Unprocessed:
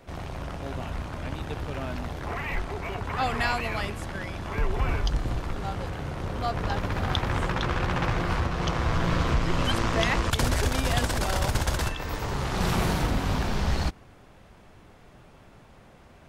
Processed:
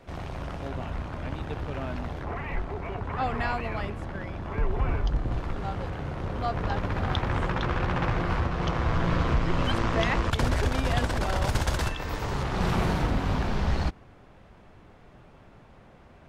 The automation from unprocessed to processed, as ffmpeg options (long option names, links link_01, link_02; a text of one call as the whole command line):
ffmpeg -i in.wav -af "asetnsamples=nb_out_samples=441:pad=0,asendcmd='0.68 lowpass f 2800;2.23 lowpass f 1300;5.32 lowpass f 2700;11.45 lowpass f 6700;12.43 lowpass f 2800',lowpass=frequency=5200:poles=1" out.wav